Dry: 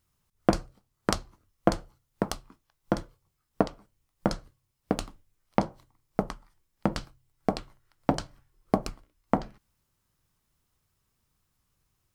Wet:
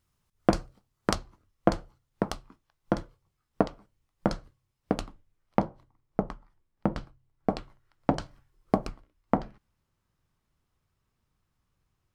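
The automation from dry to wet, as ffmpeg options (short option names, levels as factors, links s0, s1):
-af "asetnsamples=n=441:p=0,asendcmd='1.15 lowpass f 4200;5.01 lowpass f 2200;5.61 lowpass f 1300;7.49 lowpass f 3100;8.22 lowpass f 5800;8.86 lowpass f 2700',lowpass=f=8000:p=1"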